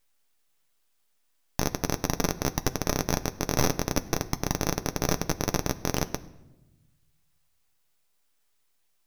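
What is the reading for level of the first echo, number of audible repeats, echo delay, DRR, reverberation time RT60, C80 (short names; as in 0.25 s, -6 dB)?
none, none, none, 9.5 dB, 1.0 s, 19.0 dB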